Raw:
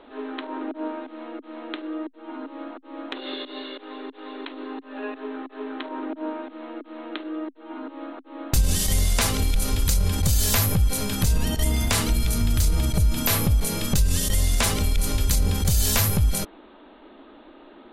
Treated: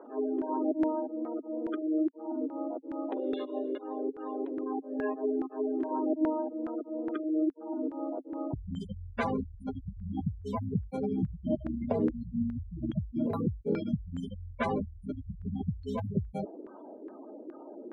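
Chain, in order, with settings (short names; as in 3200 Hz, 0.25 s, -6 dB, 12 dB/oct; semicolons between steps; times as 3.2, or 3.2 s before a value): spectral gate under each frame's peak -15 dB strong; HPF 250 Hz 12 dB/oct; bell 1200 Hz -10 dB 1.3 oct; LFO low-pass saw down 2.4 Hz 370–1600 Hz; gain +2.5 dB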